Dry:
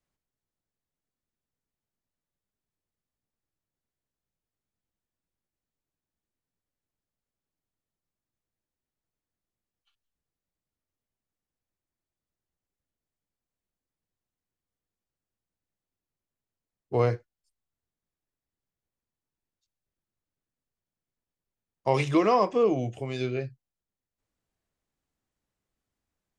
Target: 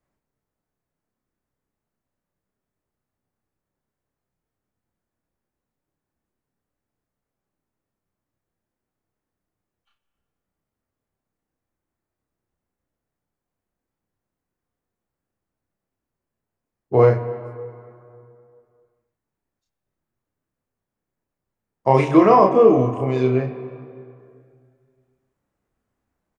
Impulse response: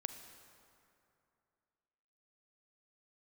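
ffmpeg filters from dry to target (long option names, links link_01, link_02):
-filter_complex "[0:a]lowshelf=frequency=67:gain=-6,asplit=2[link_01][link_02];[link_02]adelay=31,volume=-3dB[link_03];[link_01][link_03]amix=inputs=2:normalize=0,asplit=2[link_04][link_05];[1:a]atrim=start_sample=2205,lowpass=2000[link_06];[link_05][link_06]afir=irnorm=-1:irlink=0,volume=8dB[link_07];[link_04][link_07]amix=inputs=2:normalize=0,volume=-1dB"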